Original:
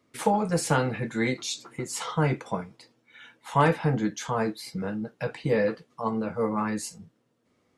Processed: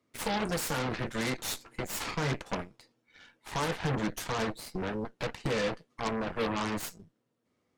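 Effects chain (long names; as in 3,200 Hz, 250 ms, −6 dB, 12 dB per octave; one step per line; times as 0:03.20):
brickwall limiter −17.5 dBFS, peak gain reduction 8.5 dB
harmonic generator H 7 −31 dB, 8 −10 dB, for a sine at −17.5 dBFS
level −5.5 dB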